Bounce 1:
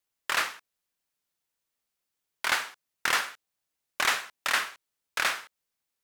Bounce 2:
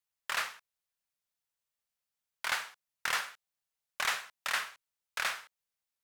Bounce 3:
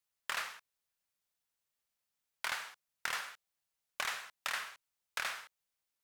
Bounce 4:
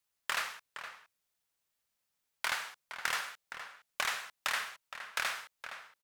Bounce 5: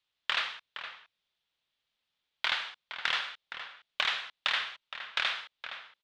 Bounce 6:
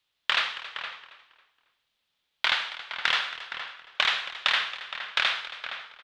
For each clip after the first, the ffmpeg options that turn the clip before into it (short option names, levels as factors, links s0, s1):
-af "equalizer=f=310:w=2.4:g=-13,volume=0.501"
-af "acompressor=threshold=0.0178:ratio=6,volume=1.19"
-filter_complex "[0:a]asplit=2[s0][s1];[s1]adelay=466.5,volume=0.355,highshelf=f=4000:g=-10.5[s2];[s0][s2]amix=inputs=2:normalize=0,volume=1.5"
-af "lowpass=f=3500:t=q:w=3.2"
-filter_complex "[0:a]asplit=4[s0][s1][s2][s3];[s1]adelay=274,afreqshift=-47,volume=0.168[s4];[s2]adelay=548,afreqshift=-94,volume=0.0537[s5];[s3]adelay=822,afreqshift=-141,volume=0.0172[s6];[s0][s4][s5][s6]amix=inputs=4:normalize=0,volume=1.88"